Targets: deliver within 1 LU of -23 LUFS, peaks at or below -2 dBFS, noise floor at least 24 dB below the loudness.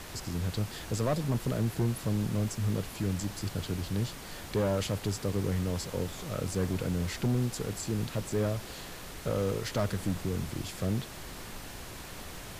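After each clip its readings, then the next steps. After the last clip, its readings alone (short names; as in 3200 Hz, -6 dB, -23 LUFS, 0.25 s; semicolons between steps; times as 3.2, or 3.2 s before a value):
clipped 1.5%; flat tops at -23.0 dBFS; noise floor -44 dBFS; noise floor target -57 dBFS; loudness -33.0 LUFS; peak -23.0 dBFS; loudness target -23.0 LUFS
-> clip repair -23 dBFS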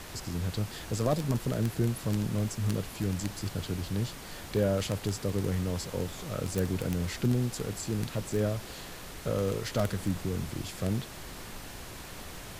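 clipped 0.0%; noise floor -44 dBFS; noise floor target -56 dBFS
-> noise print and reduce 12 dB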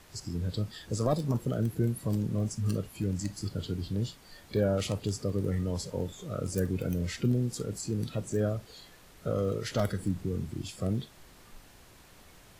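noise floor -55 dBFS; noise floor target -57 dBFS
-> noise print and reduce 6 dB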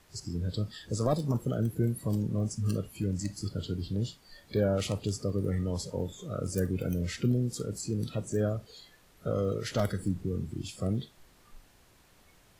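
noise floor -61 dBFS; loudness -32.5 LUFS; peak -14.5 dBFS; loudness target -23.0 LUFS
-> gain +9.5 dB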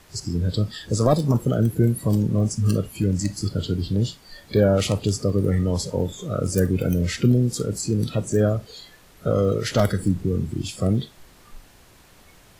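loudness -23.0 LUFS; peak -5.0 dBFS; noise floor -52 dBFS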